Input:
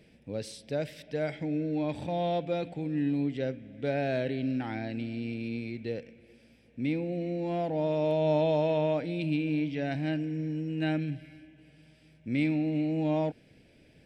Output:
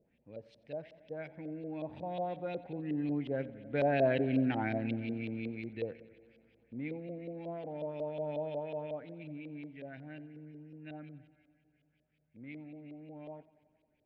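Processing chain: Doppler pass-by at 4.41 s, 9 m/s, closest 6.6 m; LFO low-pass saw up 5.5 Hz 480–3600 Hz; modulated delay 90 ms, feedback 73%, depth 51 cents, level -21 dB

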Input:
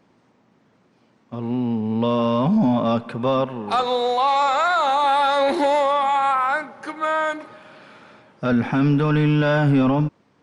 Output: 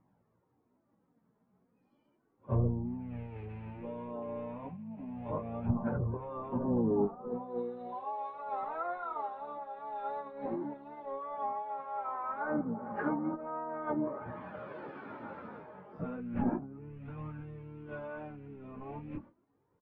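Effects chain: rattle on loud lows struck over -22 dBFS, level -19 dBFS; spectral noise reduction 17 dB; low-pass 1.1 kHz 12 dB/octave; peaking EQ 660 Hz -4 dB 0.3 oct; peak limiter -16.5 dBFS, peak gain reduction 6 dB; compressor with a negative ratio -30 dBFS, ratio -0.5; flange 0.66 Hz, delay 0.9 ms, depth 4.1 ms, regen -11%; low-pass that closes with the level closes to 580 Hz, closed at -27.5 dBFS; plain phase-vocoder stretch 1.9×; doubling 17 ms -13.5 dB; harmony voices -12 st -15 dB, -5 st -10 dB; trim +1.5 dB

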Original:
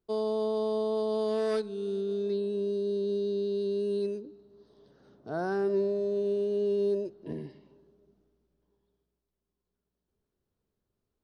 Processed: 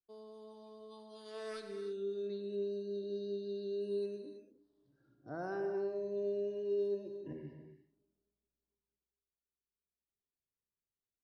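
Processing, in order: spectral noise reduction 16 dB; compression 1.5:1, threshold -36 dBFS, peak gain reduction 4 dB; gated-style reverb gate 350 ms flat, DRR 5.5 dB; trim -6 dB

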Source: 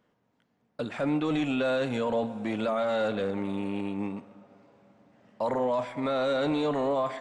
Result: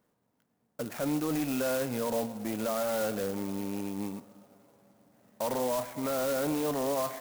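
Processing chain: sampling jitter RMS 0.072 ms; trim -3 dB

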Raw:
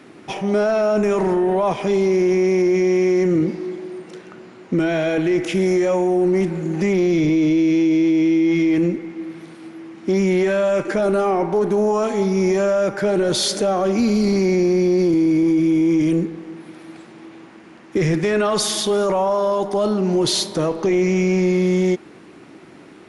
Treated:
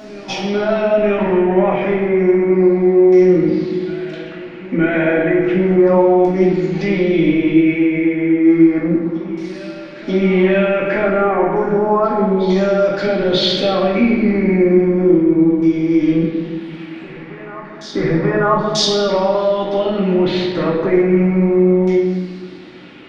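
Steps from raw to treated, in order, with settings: low-pass that closes with the level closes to 2.3 kHz, closed at -14 dBFS; treble shelf 4.6 kHz +8.5 dB; LFO low-pass saw down 0.32 Hz 960–5700 Hz; reverse echo 939 ms -17.5 dB; reverberation RT60 1.1 s, pre-delay 4 ms, DRR -4 dB; trim -3 dB

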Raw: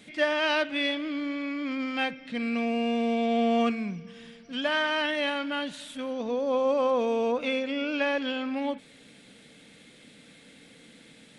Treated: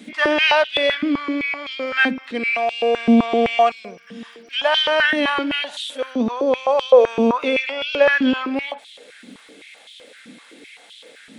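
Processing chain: crackle 57 per s -55 dBFS; 3.71–4.21 s: dynamic bell 2 kHz, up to -5 dB, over -53 dBFS, Q 0.86; step-sequenced high-pass 7.8 Hz 240–3300 Hz; trim +6 dB

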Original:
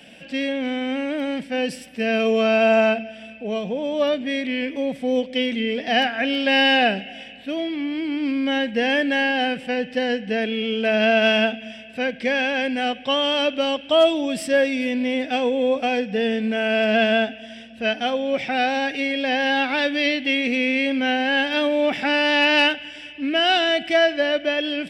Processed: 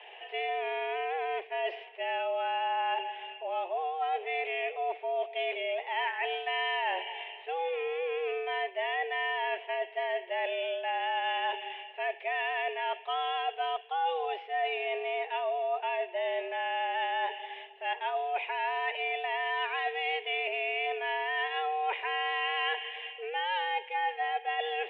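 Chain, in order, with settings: mistuned SSB +170 Hz 330–2700 Hz; reverse; compression 5:1, threshold -30 dBFS, peak gain reduction 16 dB; reverse

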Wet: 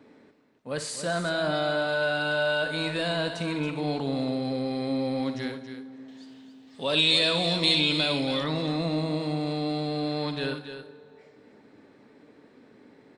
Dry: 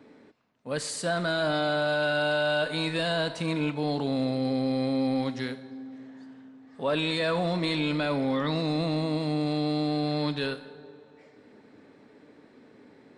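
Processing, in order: 6.08–8.44 s: resonant high shelf 2.3 kHz +10 dB, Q 1.5; loudspeakers at several distances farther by 20 m -12 dB, 95 m -10 dB; trim -1 dB

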